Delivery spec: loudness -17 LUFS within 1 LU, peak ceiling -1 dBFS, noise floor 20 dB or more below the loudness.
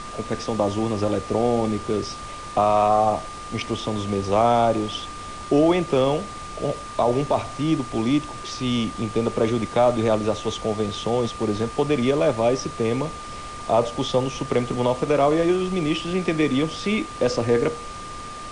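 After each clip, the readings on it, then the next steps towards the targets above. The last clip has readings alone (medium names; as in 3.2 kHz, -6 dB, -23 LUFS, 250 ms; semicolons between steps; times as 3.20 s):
steady tone 1.2 kHz; tone level -35 dBFS; noise floor -36 dBFS; noise floor target -43 dBFS; loudness -23.0 LUFS; peak level -7.5 dBFS; loudness target -17.0 LUFS
-> band-stop 1.2 kHz, Q 30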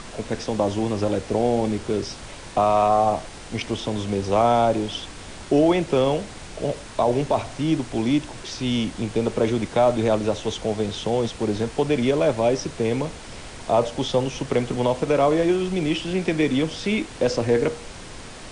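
steady tone not found; noise floor -39 dBFS; noise floor target -43 dBFS
-> noise print and reduce 6 dB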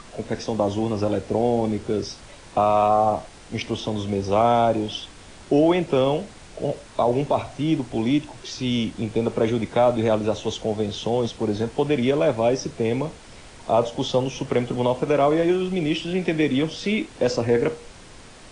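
noise floor -45 dBFS; loudness -23.0 LUFS; peak level -8.0 dBFS; loudness target -17.0 LUFS
-> trim +6 dB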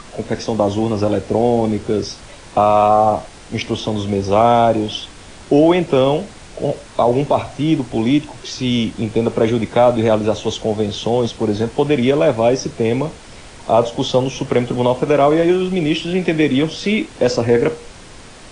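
loudness -17.0 LUFS; peak level -2.0 dBFS; noise floor -39 dBFS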